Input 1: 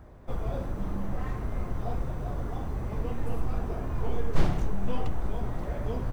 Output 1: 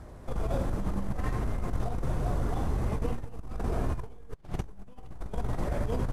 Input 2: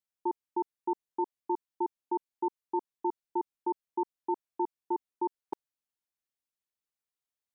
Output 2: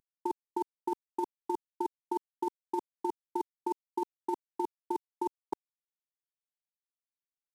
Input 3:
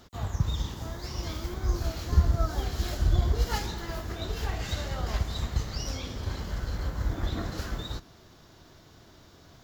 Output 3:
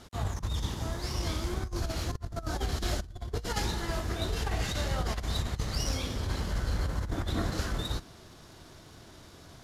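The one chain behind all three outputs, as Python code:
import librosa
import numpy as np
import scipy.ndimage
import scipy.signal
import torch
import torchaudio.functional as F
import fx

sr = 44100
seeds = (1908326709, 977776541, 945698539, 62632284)

y = fx.cvsd(x, sr, bps=64000)
y = fx.over_compress(y, sr, threshold_db=-30.0, ratio=-0.5)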